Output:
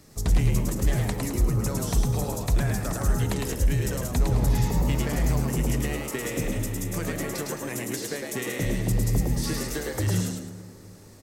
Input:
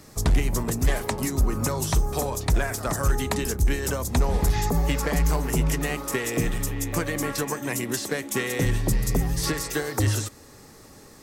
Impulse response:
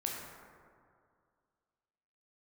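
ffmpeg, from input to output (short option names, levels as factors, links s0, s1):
-filter_complex "[0:a]equalizer=f=1100:w=0.97:g=-3.5,asplit=6[s0][s1][s2][s3][s4][s5];[s1]adelay=107,afreqshift=77,volume=0.708[s6];[s2]adelay=214,afreqshift=154,volume=0.248[s7];[s3]adelay=321,afreqshift=231,volume=0.0871[s8];[s4]adelay=428,afreqshift=308,volume=0.0302[s9];[s5]adelay=535,afreqshift=385,volume=0.0106[s10];[s0][s6][s7][s8][s9][s10]amix=inputs=6:normalize=0,asplit=2[s11][s12];[1:a]atrim=start_sample=2205,lowshelf=f=160:g=10[s13];[s12][s13]afir=irnorm=-1:irlink=0,volume=0.282[s14];[s11][s14]amix=inputs=2:normalize=0,volume=0.447"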